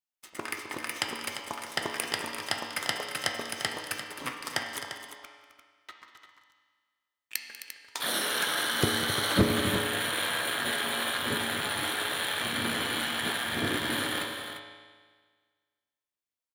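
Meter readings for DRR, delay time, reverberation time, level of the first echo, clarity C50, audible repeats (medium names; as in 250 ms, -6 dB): 1.0 dB, 193 ms, 1.6 s, -16.0 dB, 2.5 dB, 3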